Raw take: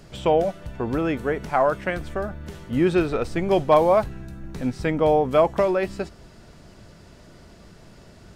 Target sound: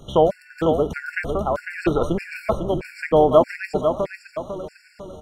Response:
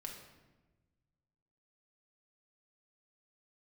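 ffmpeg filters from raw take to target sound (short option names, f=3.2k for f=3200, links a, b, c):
-filter_complex "[0:a]atempo=1.6,aecho=1:1:500|1000|1500|2000|2500:0.473|0.199|0.0835|0.0351|0.0147,asplit=2[a][b];[1:a]atrim=start_sample=2205[c];[b][c]afir=irnorm=-1:irlink=0,volume=-12dB[d];[a][d]amix=inputs=2:normalize=0,afftfilt=real='re*gt(sin(2*PI*1.6*pts/sr)*(1-2*mod(floor(b*sr/1024/1400),2)),0)':imag='im*gt(sin(2*PI*1.6*pts/sr)*(1-2*mod(floor(b*sr/1024/1400),2)),0)':win_size=1024:overlap=0.75,volume=3dB"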